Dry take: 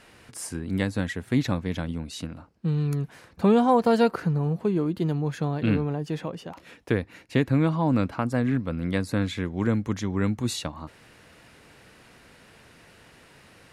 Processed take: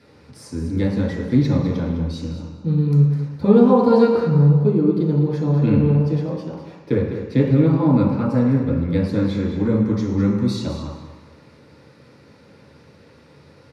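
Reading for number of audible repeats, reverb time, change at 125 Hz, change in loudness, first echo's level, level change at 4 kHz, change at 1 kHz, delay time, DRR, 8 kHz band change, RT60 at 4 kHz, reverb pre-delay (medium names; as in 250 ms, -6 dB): 1, 1.2 s, +9.0 dB, +7.5 dB, -9.5 dB, -1.0 dB, +1.0 dB, 206 ms, -6.0 dB, no reading, 1.2 s, 3 ms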